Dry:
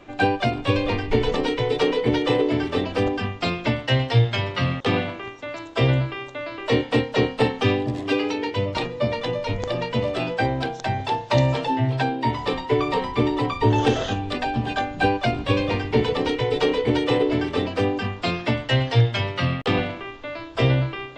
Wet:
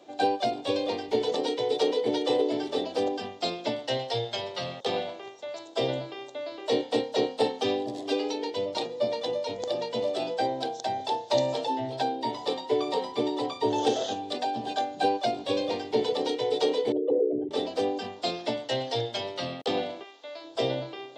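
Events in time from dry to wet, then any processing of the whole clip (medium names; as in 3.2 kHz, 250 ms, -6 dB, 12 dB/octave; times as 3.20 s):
3.97–5.68 s: peaking EQ 280 Hz -14.5 dB 0.25 oct
16.92–17.51 s: resonances exaggerated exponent 3
20.03–20.43 s: high-pass 1.5 kHz -> 610 Hz 6 dB/octave
whole clip: Bessel high-pass 500 Hz, order 2; high-order bell 1.7 kHz -13 dB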